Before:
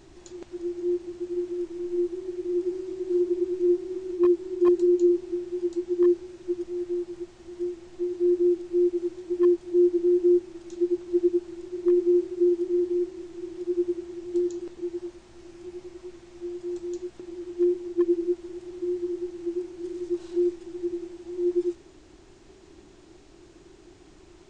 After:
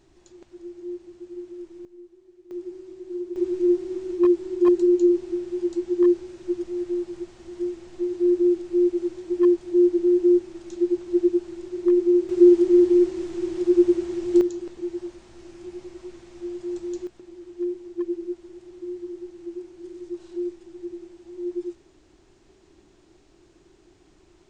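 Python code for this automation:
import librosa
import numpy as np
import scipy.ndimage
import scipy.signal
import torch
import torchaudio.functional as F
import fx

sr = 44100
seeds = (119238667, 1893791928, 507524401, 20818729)

y = fx.gain(x, sr, db=fx.steps((0.0, -7.5), (1.85, -19.5), (2.51, -7.5), (3.36, 2.5), (12.29, 9.0), (14.41, 2.0), (17.07, -5.0)))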